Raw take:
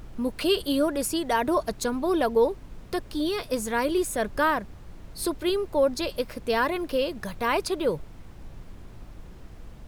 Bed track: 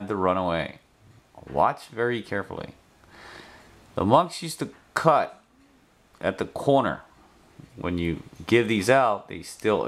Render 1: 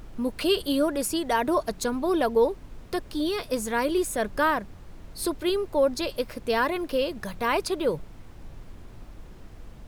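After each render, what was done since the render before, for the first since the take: de-hum 60 Hz, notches 3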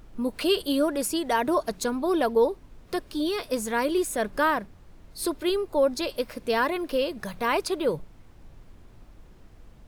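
noise print and reduce 6 dB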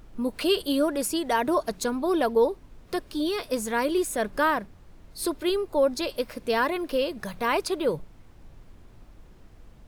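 nothing audible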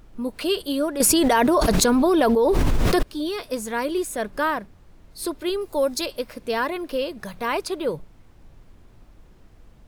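1–3.03 fast leveller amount 100%; 5.61–6.06 high shelf 4300 Hz +11 dB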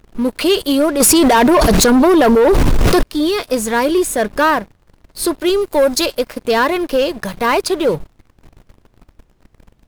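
sample leveller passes 3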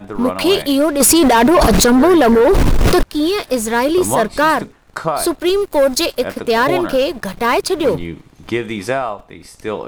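add bed track 0 dB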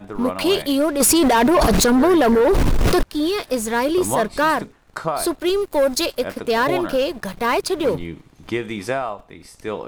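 gain -4.5 dB

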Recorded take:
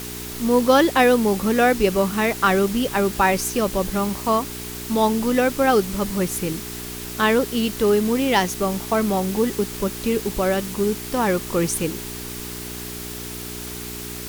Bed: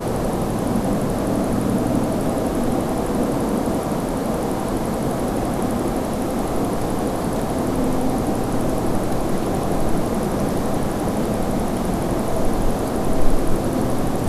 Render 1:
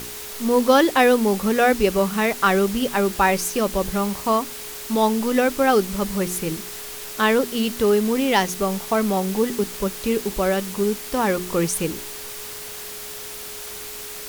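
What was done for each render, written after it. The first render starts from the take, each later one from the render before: de-hum 60 Hz, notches 6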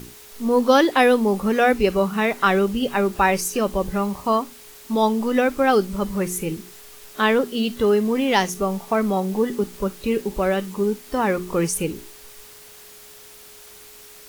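noise print and reduce 10 dB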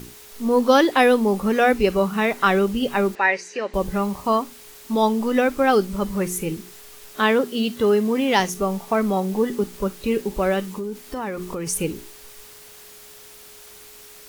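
3.15–3.74 speaker cabinet 480–5300 Hz, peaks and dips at 700 Hz -5 dB, 1200 Hz -10 dB, 1900 Hz +9 dB, 3300 Hz -9 dB, 5300 Hz -6 dB; 7.2–8.4 HPF 76 Hz; 10.67–11.67 compressor, threshold -25 dBFS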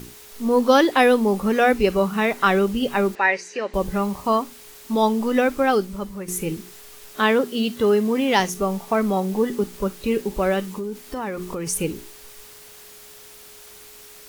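5.53–6.28 fade out, to -11.5 dB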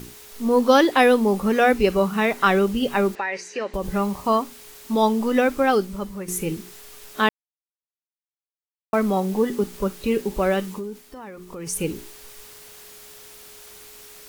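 3.17–3.86 compressor 10:1, threshold -21 dBFS; 7.29–8.93 mute; 10.68–11.91 dip -10 dB, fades 0.45 s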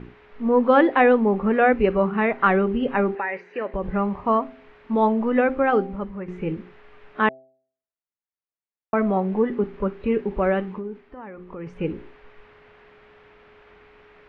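LPF 2300 Hz 24 dB/oct; de-hum 131.2 Hz, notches 6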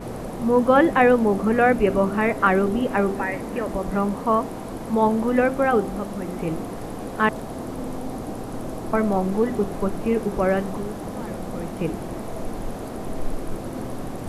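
add bed -10.5 dB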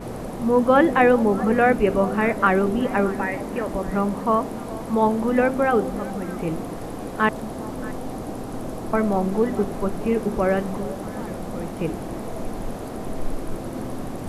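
delay with a stepping band-pass 0.208 s, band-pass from 240 Hz, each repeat 1.4 oct, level -10.5 dB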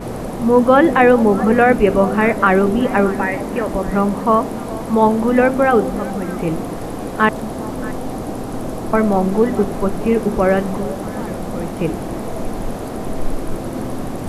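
gain +6 dB; limiter -2 dBFS, peak gain reduction 3 dB

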